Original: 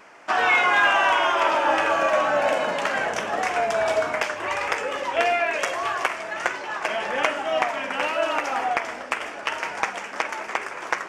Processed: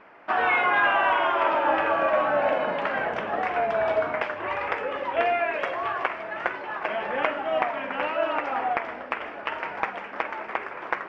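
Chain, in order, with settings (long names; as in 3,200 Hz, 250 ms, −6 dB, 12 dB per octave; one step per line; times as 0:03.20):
high-frequency loss of the air 410 metres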